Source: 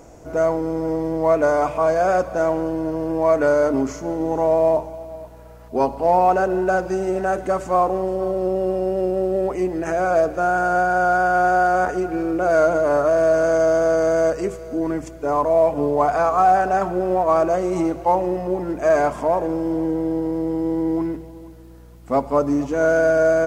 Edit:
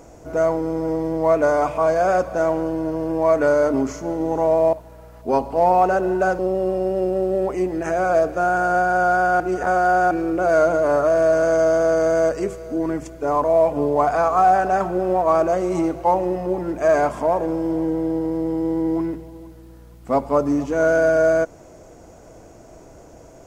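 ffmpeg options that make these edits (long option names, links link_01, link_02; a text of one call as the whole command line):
ffmpeg -i in.wav -filter_complex "[0:a]asplit=5[link_01][link_02][link_03][link_04][link_05];[link_01]atrim=end=4.732[link_06];[link_02]atrim=start=5.198:end=6.862[link_07];[link_03]atrim=start=8.398:end=11.412[link_08];[link_04]atrim=start=11.408:end=12.122,asetpts=PTS-STARTPTS,areverse[link_09];[link_05]atrim=start=12.118[link_10];[link_06][link_07]acrossfade=duration=0.004:curve1=hsin:curve2=hsin[link_11];[link_11][link_08]acrossfade=duration=0.004:curve1=hsin:curve2=hsin[link_12];[link_12][link_09]acrossfade=duration=0.004:curve1=hsin:curve2=hsin[link_13];[link_13][link_10]acrossfade=duration=0.004:curve1=hsin:curve2=hsin" out.wav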